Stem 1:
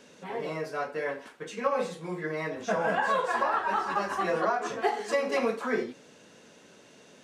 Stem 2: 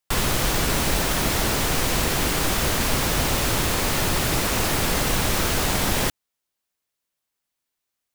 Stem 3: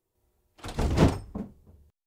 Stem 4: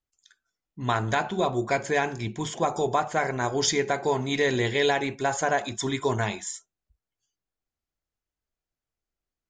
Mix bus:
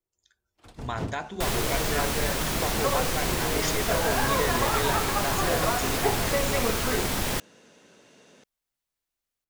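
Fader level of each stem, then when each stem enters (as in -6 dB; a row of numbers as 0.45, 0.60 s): -1.0, -5.5, -12.5, -7.5 dB; 1.20, 1.30, 0.00, 0.00 s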